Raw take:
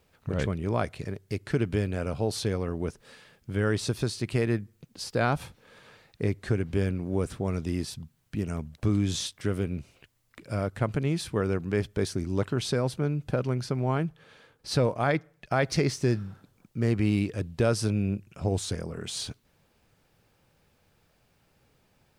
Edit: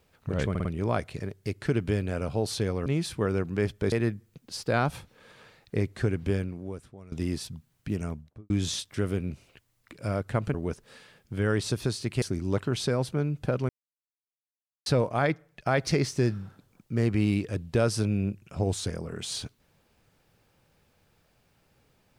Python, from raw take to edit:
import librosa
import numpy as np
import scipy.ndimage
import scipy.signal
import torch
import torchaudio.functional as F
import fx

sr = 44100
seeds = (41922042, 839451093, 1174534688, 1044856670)

y = fx.studio_fade_out(x, sr, start_s=8.46, length_s=0.51)
y = fx.edit(y, sr, fx.stutter(start_s=0.5, slice_s=0.05, count=4),
    fx.swap(start_s=2.71, length_s=1.68, other_s=11.01, other_length_s=1.06),
    fx.fade_out_to(start_s=6.76, length_s=0.83, curve='qua', floor_db=-19.5),
    fx.silence(start_s=13.54, length_s=1.17), tone=tone)